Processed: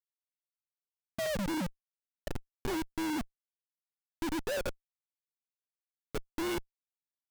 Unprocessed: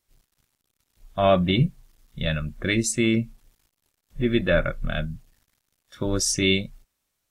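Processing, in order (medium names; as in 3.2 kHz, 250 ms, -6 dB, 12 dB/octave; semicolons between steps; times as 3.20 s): formants replaced by sine waves; 1.26–2.31 s: level-controlled noise filter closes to 650 Hz, open at -17.5 dBFS; Schmitt trigger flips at -23.5 dBFS; trim -6.5 dB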